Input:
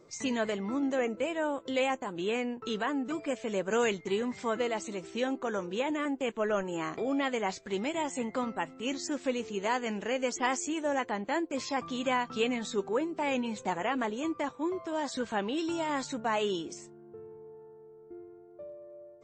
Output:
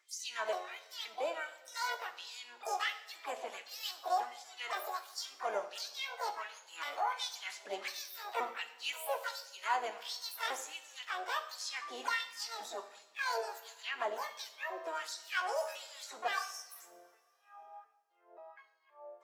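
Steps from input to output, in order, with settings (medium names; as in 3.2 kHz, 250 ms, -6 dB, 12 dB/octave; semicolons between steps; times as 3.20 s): pitch shift switched off and on +10.5 st, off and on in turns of 525 ms; gain riding 0.5 s; harmony voices +7 st -8 dB, +12 st -17 dB; LFO high-pass sine 1.4 Hz 590–5100 Hz; two-slope reverb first 0.6 s, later 2.5 s, from -17 dB, DRR 7.5 dB; trim -8 dB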